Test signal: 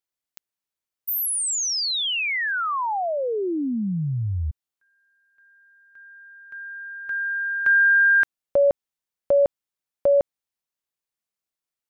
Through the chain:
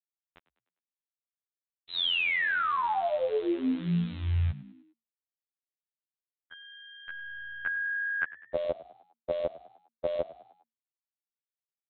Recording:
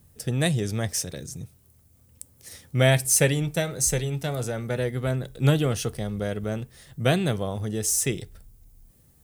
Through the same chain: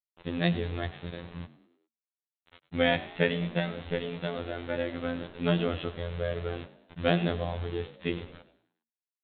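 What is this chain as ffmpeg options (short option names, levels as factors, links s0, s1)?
-filter_complex "[0:a]aresample=8000,acrusher=bits=6:mix=0:aa=0.000001,aresample=44100,afftfilt=real='hypot(re,im)*cos(PI*b)':imag='0':win_size=2048:overlap=0.75,asplit=5[s0][s1][s2][s3][s4];[s1]adelay=101,afreqshift=57,volume=0.133[s5];[s2]adelay=202,afreqshift=114,volume=0.0624[s6];[s3]adelay=303,afreqshift=171,volume=0.0295[s7];[s4]adelay=404,afreqshift=228,volume=0.0138[s8];[s0][s5][s6][s7][s8]amix=inputs=5:normalize=0"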